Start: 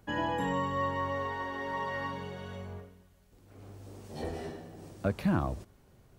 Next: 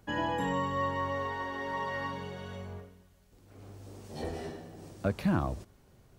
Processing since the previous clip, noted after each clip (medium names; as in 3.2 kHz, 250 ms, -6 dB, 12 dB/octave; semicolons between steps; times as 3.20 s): peaking EQ 5.5 kHz +2 dB 1.4 oct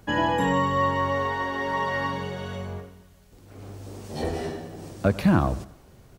feedback delay 93 ms, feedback 50%, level -20 dB; trim +8.5 dB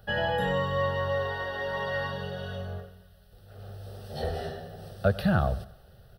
static phaser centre 1.5 kHz, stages 8